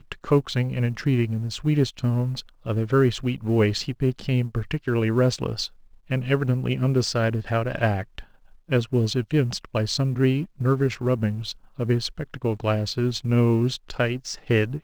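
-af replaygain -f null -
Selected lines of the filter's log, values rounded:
track_gain = +4.6 dB
track_peak = 0.270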